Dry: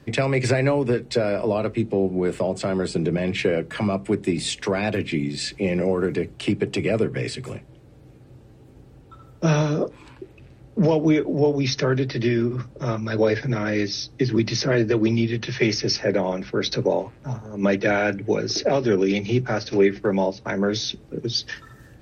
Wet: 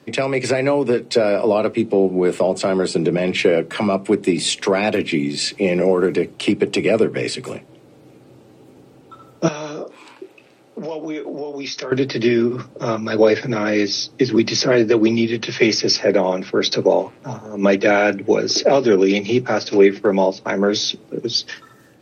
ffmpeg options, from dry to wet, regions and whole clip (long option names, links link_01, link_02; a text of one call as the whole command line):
ffmpeg -i in.wav -filter_complex "[0:a]asettb=1/sr,asplit=3[link_01][link_02][link_03];[link_01]atrim=end=9.484[link_04];[link_02]atrim=start=9.48:end=11.92,asetpts=PTS-STARTPTS,afade=type=in:duration=0.004:curve=qsin,afade=type=out:start_time=2.436:duration=0.004:curve=qsin,highpass=frequency=480:poles=1,acompressor=threshold=-31dB:ratio=6:attack=3.2:release=140:knee=1:detection=peak,asplit=2[link_05][link_06];[link_06]adelay=26,volume=-11.5dB[link_07];[link_05][link_07]amix=inputs=2:normalize=0,atrim=end_sample=107604[link_08];[link_03]atrim=start=11.916[link_09];[link_04][link_08]acrossfade=duration=0.004:curve1=hsin:curve2=qsin[link_10];[link_10][link_09]acrossfade=duration=0.004:curve1=qsin:curve2=hsin,highpass=220,equalizer=frequency=1700:width_type=o:width=0.32:gain=-4.5,dynaudnorm=framelen=160:gausssize=11:maxgain=4dB,volume=3dB" out.wav